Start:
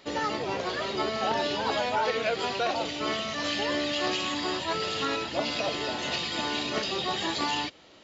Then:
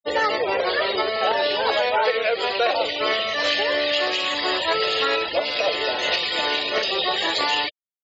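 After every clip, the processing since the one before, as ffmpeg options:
ffmpeg -i in.wav -af "afftfilt=real='re*gte(hypot(re,im),0.0158)':imag='im*gte(hypot(re,im),0.0158)':win_size=1024:overlap=0.75,equalizer=frequency=125:width_type=o:width=1:gain=-10,equalizer=frequency=250:width_type=o:width=1:gain=-9,equalizer=frequency=500:width_type=o:width=1:gain=10,equalizer=frequency=2000:width_type=o:width=1:gain=7,equalizer=frequency=4000:width_type=o:width=1:gain=5,alimiter=limit=-14.5dB:level=0:latency=1:release=493,volume=4dB" out.wav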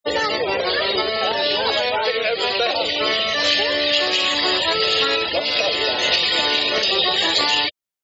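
ffmpeg -i in.wav -filter_complex "[0:a]acrossover=split=280|3000[link_01][link_02][link_03];[link_02]acompressor=threshold=-31dB:ratio=3[link_04];[link_01][link_04][link_03]amix=inputs=3:normalize=0,volume=7.5dB" out.wav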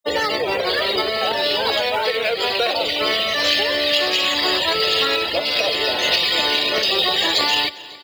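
ffmpeg -i in.wav -filter_complex "[0:a]acrossover=split=110|770[link_01][link_02][link_03];[link_03]acrusher=bits=5:mode=log:mix=0:aa=0.000001[link_04];[link_01][link_02][link_04]amix=inputs=3:normalize=0,aecho=1:1:272|544|816|1088|1360:0.1|0.059|0.0348|0.0205|0.0121" out.wav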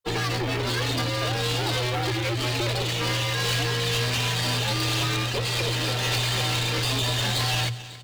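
ffmpeg -i in.wav -af "aeval=exprs='max(val(0),0)':channel_layout=same,afreqshift=-120,asoftclip=type=tanh:threshold=-19.5dB" out.wav

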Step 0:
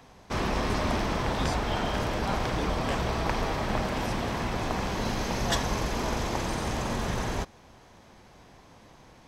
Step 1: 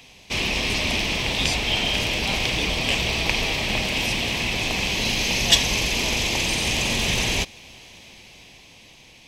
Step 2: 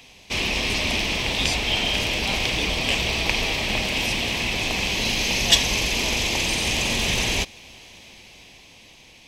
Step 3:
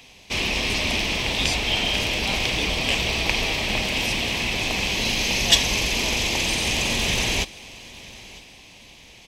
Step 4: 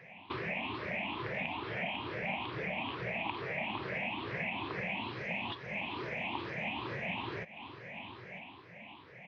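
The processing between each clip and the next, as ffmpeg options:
ffmpeg -i in.wav -af "highshelf=frequency=1900:width_type=q:width=3:gain=10,dynaudnorm=framelen=310:gausssize=9:maxgain=5dB" out.wav
ffmpeg -i in.wav -af "equalizer=frequency=140:width_type=o:width=0.66:gain=-3" out.wav
ffmpeg -i in.wav -af "aecho=1:1:950|1900|2850:0.0841|0.0328|0.0128" out.wav
ffmpeg -i in.wav -af "afftfilt=real='re*pow(10,18/40*sin(2*PI*(0.56*log(max(b,1)*sr/1024/100)/log(2)-(2.3)*(pts-256)/sr)))':imag='im*pow(10,18/40*sin(2*PI*(0.56*log(max(b,1)*sr/1024/100)/log(2)-(2.3)*(pts-256)/sr)))':win_size=1024:overlap=0.75,acompressor=threshold=-27dB:ratio=6,highpass=frequency=110:width=0.5412,highpass=frequency=110:width=1.3066,equalizer=frequency=240:width_type=q:width=4:gain=-4,equalizer=frequency=460:width_type=q:width=4:gain=-4,equalizer=frequency=980:width_type=q:width=4:gain=4,lowpass=frequency=2300:width=0.5412,lowpass=frequency=2300:width=1.3066,volume=-3.5dB" out.wav

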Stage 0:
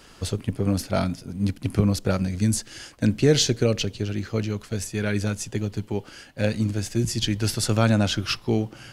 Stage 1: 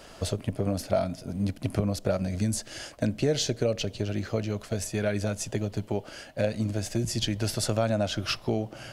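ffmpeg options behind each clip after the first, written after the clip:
ffmpeg -i in.wav -af "equalizer=frequency=630:width_type=o:width=0.48:gain=12.5,acompressor=threshold=-26dB:ratio=2.5" out.wav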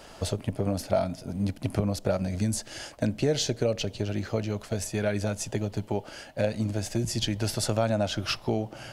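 ffmpeg -i in.wav -af "equalizer=frequency=860:width=5.5:gain=5" out.wav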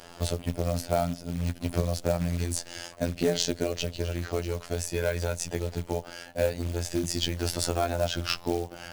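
ffmpeg -i in.wav -af "afftfilt=real='hypot(re,im)*cos(PI*b)':imag='0':win_size=2048:overlap=0.75,acrusher=bits=4:mode=log:mix=0:aa=0.000001,volume=3.5dB" out.wav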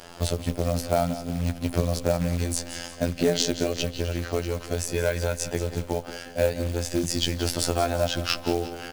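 ffmpeg -i in.wav -af "aecho=1:1:178|356|534|712|890:0.224|0.107|0.0516|0.0248|0.0119,volume=3dB" out.wav

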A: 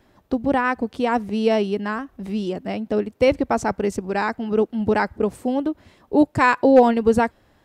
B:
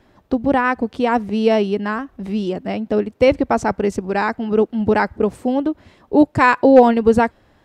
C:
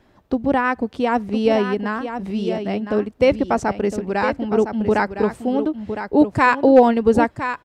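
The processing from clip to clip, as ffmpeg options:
ffmpeg -i in.wav -af "highshelf=frequency=8000:gain=-8.5,volume=3.5dB" out.wav
ffmpeg -i in.wav -af "aecho=1:1:1010:0.355,volume=-2dB" out.wav

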